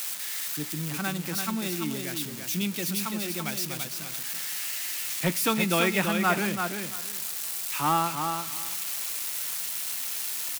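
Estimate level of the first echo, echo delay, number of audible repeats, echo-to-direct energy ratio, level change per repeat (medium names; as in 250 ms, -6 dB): -6.0 dB, 337 ms, 2, -6.0 dB, -15.5 dB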